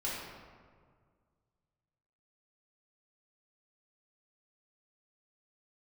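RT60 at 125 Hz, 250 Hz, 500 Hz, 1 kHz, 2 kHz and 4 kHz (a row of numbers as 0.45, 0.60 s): 2.6, 2.1, 1.9, 1.8, 1.3, 0.95 s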